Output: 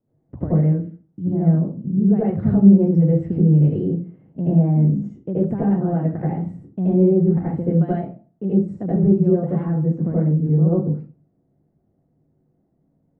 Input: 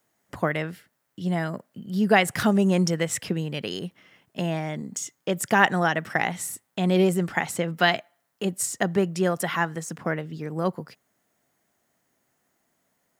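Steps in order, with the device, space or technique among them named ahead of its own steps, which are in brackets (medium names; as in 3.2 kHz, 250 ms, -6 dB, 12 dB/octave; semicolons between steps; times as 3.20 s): television next door (compression 4:1, threshold -23 dBFS, peak gain reduction 10 dB; low-pass 260 Hz 12 dB/octave; reverberation RT60 0.35 s, pre-delay 73 ms, DRR -8 dB); trim +7 dB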